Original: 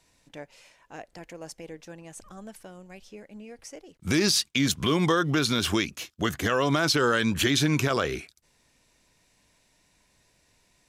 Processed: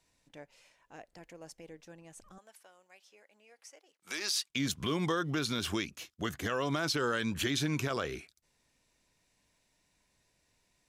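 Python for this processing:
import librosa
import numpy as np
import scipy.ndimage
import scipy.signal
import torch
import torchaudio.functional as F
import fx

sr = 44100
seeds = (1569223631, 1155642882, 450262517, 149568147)

y = fx.highpass(x, sr, hz=720.0, slope=12, at=(2.38, 4.5))
y = y * librosa.db_to_amplitude(-8.5)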